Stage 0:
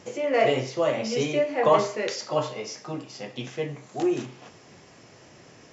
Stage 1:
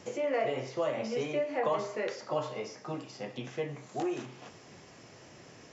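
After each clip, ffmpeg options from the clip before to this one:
-filter_complex "[0:a]acrossover=split=510|2000[s0][s1][s2];[s0]acompressor=threshold=0.0178:ratio=4[s3];[s1]acompressor=threshold=0.0355:ratio=4[s4];[s2]acompressor=threshold=0.00398:ratio=4[s5];[s3][s4][s5]amix=inputs=3:normalize=0,volume=0.794"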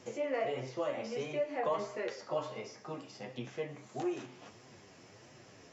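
-af "flanger=delay=7.5:depth=4.2:regen=37:speed=1.5:shape=triangular"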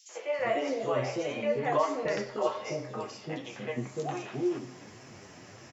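-filter_complex "[0:a]acrossover=split=500|3700[s0][s1][s2];[s1]adelay=90[s3];[s0]adelay=390[s4];[s4][s3][s2]amix=inputs=3:normalize=0,volume=2.51"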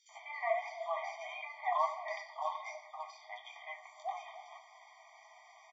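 -af "highpass=470,lowpass=3800,afftfilt=real='re*eq(mod(floor(b*sr/1024/620),2),1)':imag='im*eq(mod(floor(b*sr/1024/620),2),1)':win_size=1024:overlap=0.75,volume=0.841"

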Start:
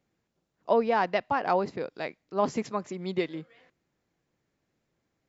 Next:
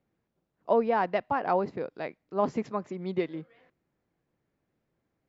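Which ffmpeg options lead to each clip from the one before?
-af "lowpass=f=1700:p=1"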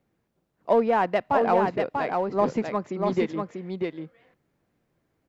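-filter_complex "[0:a]asplit=2[s0][s1];[s1]asoftclip=type=hard:threshold=0.0376,volume=0.335[s2];[s0][s2]amix=inputs=2:normalize=0,aecho=1:1:641:0.631,volume=1.33"

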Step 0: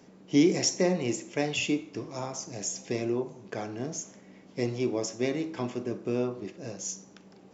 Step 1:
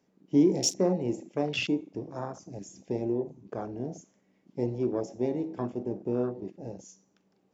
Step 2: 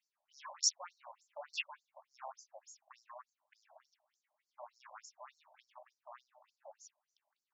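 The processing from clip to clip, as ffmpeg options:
-af "afwtdn=0.02"
-filter_complex "[0:a]acrossover=split=120|2500[s0][s1][s2];[s1]asoftclip=type=tanh:threshold=0.0335[s3];[s0][s3][s2]amix=inputs=3:normalize=0,afftfilt=real='re*between(b*sr/1024,750*pow(6000/750,0.5+0.5*sin(2*PI*3.4*pts/sr))/1.41,750*pow(6000/750,0.5+0.5*sin(2*PI*3.4*pts/sr))*1.41)':imag='im*between(b*sr/1024,750*pow(6000/750,0.5+0.5*sin(2*PI*3.4*pts/sr))/1.41,750*pow(6000/750,0.5+0.5*sin(2*PI*3.4*pts/sr))*1.41)':win_size=1024:overlap=0.75,volume=0.708"

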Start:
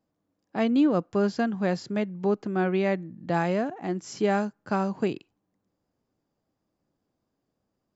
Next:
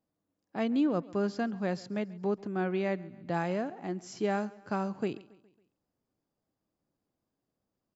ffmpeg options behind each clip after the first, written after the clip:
-af "aecho=1:1:138|276|414|552:0.0841|0.0421|0.021|0.0105,volume=0.501"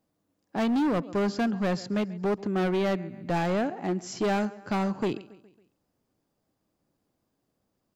-af "volume=31.6,asoftclip=hard,volume=0.0316,volume=2.37"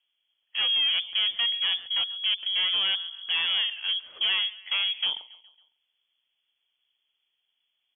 -af "lowpass=f=3000:t=q:w=0.5098,lowpass=f=3000:t=q:w=0.6013,lowpass=f=3000:t=q:w=0.9,lowpass=f=3000:t=q:w=2.563,afreqshift=-3500"

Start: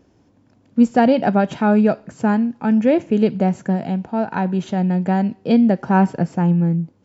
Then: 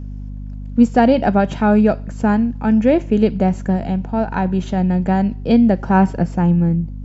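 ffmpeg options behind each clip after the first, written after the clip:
-af "aeval=exprs='val(0)+0.0355*(sin(2*PI*50*n/s)+sin(2*PI*2*50*n/s)/2+sin(2*PI*3*50*n/s)/3+sin(2*PI*4*50*n/s)/4+sin(2*PI*5*50*n/s)/5)':c=same,volume=1.19"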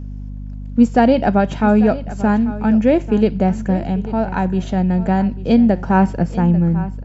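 -af "aecho=1:1:842:0.168"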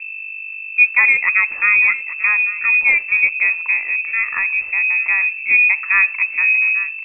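-af "lowpass=f=2300:t=q:w=0.5098,lowpass=f=2300:t=q:w=0.6013,lowpass=f=2300:t=q:w=0.9,lowpass=f=2300:t=q:w=2.563,afreqshift=-2700,asubboost=boost=6:cutoff=59,volume=0.891"

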